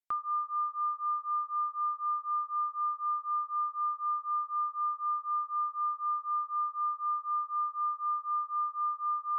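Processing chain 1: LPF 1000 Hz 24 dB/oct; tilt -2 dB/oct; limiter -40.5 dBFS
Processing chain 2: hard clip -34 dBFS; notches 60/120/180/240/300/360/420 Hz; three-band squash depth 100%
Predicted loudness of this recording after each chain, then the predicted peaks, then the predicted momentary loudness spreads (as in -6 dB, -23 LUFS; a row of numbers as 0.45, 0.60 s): -44.0, -35.0 LUFS; -40.5, -18.0 dBFS; 1, 1 LU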